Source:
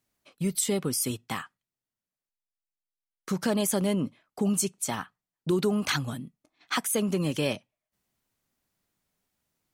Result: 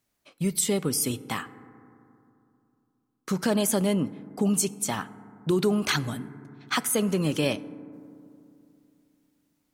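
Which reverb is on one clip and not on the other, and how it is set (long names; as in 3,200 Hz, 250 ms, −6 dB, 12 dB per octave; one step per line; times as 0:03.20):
feedback delay network reverb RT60 2.7 s, low-frequency decay 1.25×, high-frequency decay 0.25×, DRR 15.5 dB
level +2 dB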